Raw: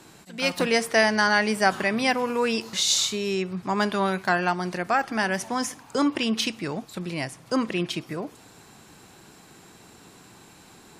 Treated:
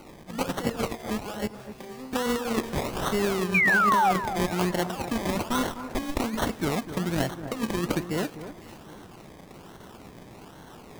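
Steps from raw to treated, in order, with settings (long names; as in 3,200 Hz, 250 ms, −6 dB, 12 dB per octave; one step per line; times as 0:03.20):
0:05.49–0:06.20: lower of the sound and its delayed copy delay 0.88 ms
compressor whose output falls as the input rises −27 dBFS, ratio −0.5
sample-and-hold swept by an LFO 25×, swing 60% 1.2 Hz
0:01.47–0:02.13: tuned comb filter 130 Hz, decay 1 s, harmonics all, mix 90%
0:03.54–0:04.12: sound drawn into the spectrogram fall 700–2,500 Hz −21 dBFS
on a send: delay that swaps between a low-pass and a high-pass 252 ms, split 1,700 Hz, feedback 52%, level −11 dB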